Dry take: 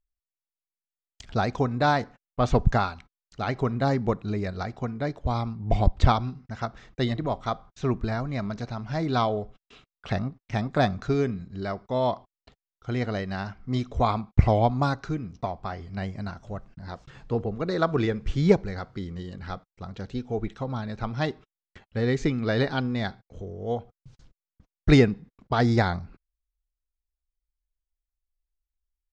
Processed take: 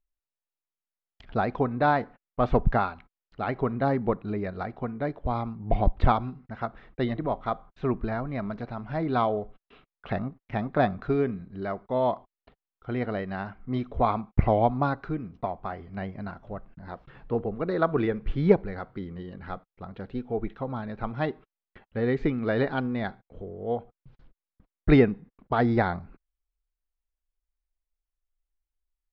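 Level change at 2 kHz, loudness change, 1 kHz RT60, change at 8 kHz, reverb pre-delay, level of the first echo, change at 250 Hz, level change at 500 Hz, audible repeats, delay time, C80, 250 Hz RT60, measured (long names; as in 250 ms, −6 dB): −1.5 dB, −1.0 dB, no reverb audible, can't be measured, no reverb audible, no echo audible, −1.0 dB, 0.0 dB, no echo audible, no echo audible, no reverb audible, no reverb audible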